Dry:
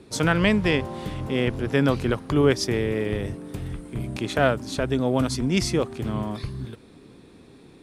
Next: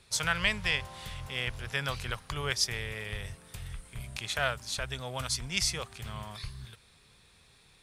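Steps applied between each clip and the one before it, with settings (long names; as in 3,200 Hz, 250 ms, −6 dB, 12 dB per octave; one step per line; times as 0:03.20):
guitar amp tone stack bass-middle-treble 10-0-10
level +1.5 dB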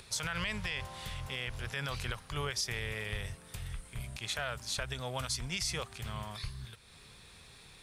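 brickwall limiter −24 dBFS, peak gain reduction 11 dB
upward compression, threshold −47 dBFS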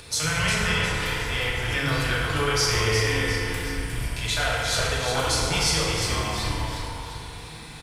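echo with shifted repeats 357 ms, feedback 46%, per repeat −79 Hz, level −5.5 dB
feedback delay network reverb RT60 2.5 s, low-frequency decay 0.85×, high-frequency decay 0.5×, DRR −6 dB
level +6 dB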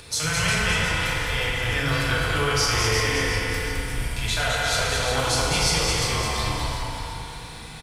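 single-tap delay 212 ms −4 dB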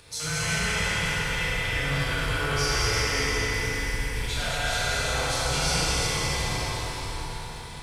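dense smooth reverb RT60 3.8 s, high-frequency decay 0.95×, DRR −4.5 dB
level −9 dB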